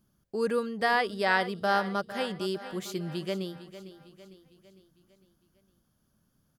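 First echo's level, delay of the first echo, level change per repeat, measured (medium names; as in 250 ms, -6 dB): -14.0 dB, 454 ms, -6.0 dB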